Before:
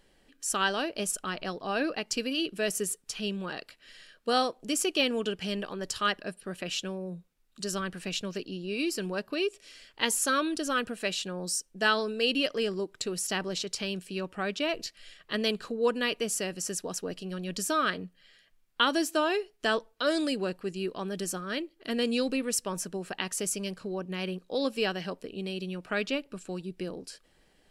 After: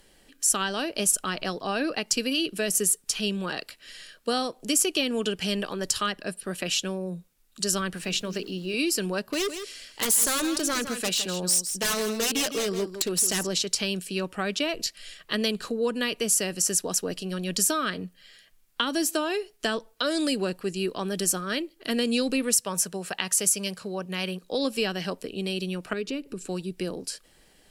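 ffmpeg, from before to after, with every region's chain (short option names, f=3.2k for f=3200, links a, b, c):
-filter_complex "[0:a]asettb=1/sr,asplit=3[a][b][c];[a]atrim=end=7.974[d];[b]atrim=start=7.97:end=8.74,asetpts=PTS-STARTPTS,afade=t=in:d=0.004:c=qsin,afade=t=out:st=0.766:d=0.004:c=qsin,bandreject=f=50:t=h:w=6,bandreject=f=100:t=h:w=6,bandreject=f=150:t=h:w=6,bandreject=f=200:t=h:w=6,bandreject=f=250:t=h:w=6,bandreject=f=300:t=h:w=6,bandreject=f=350:t=h:w=6,bandreject=f=400:t=h:w=6,bandreject=f=450:t=h:w=6,aeval=exprs='val(0)*gte(abs(val(0)),0.00178)':c=same,highshelf=f=6.1k:g=-6[e];[c]atrim=start=8.736[f];[d][e]acrossfade=d=0.004:c1=hsin:c2=qsin[g];[g][f]acrossfade=d=0.004:c1=qsin:c2=hsin,asettb=1/sr,asplit=3[h][i][j];[h]atrim=end=9.254[k];[i]atrim=start=9.25:end=13.47,asetpts=PTS-STARTPTS,afade=t=in:d=0.004:c=qsin,afade=t=out:st=4.216:d=0.004:c=qsin,aeval=exprs='0.0501*(abs(mod(val(0)/0.0501+3,4)-2)-1)':c=same,aecho=1:1:161:0.299,atrim=end_sample=186102[l];[j]atrim=start=13.466[m];[k][l]acrossfade=d=0.004:c1=hsin:c2=qsin[n];[n][m]acrossfade=d=0.004:c1=qsin:c2=hsin,asettb=1/sr,asplit=3[o][p][q];[o]atrim=end=22.564[r];[p]atrim=start=22.56:end=24.42,asetpts=PTS-STARTPTS,afade=t=in:d=0.004:c=qsin,afade=t=out:st=1.856:d=0.004:c=qsin,highpass=f=100:p=1,equalizer=f=300:w=2.3:g=-8.5[s];[q]atrim=start=24.416[t];[r][s]acrossfade=d=0.004:c1=hsin:c2=qsin[u];[u][t]acrossfade=d=0.004:c1=qsin:c2=hsin,asettb=1/sr,asplit=3[v][w][x];[v]atrim=end=25.934[y];[w]atrim=start=25.93:end=26.47,asetpts=PTS-STARTPTS,afade=t=in:d=0.004:c=qsin,afade=t=out:st=0.536:d=0.004:c=qsin,lowshelf=f=540:t=q:w=3:g=6.5,bandreject=f=3.3k:w=17,acompressor=threshold=-42dB:ratio=2:attack=3.2:release=140:knee=1:detection=peak[z];[x]atrim=start=26.466[aa];[y][z]acrossfade=d=0.004:c1=hsin:c2=qsin[ab];[ab][aa]acrossfade=d=0.004:c1=qsin:c2=hsin,acrossover=split=280[ac][ad];[ad]acompressor=threshold=-30dB:ratio=6[ae];[ac][ae]amix=inputs=2:normalize=0,aemphasis=mode=production:type=cd,volume=5dB"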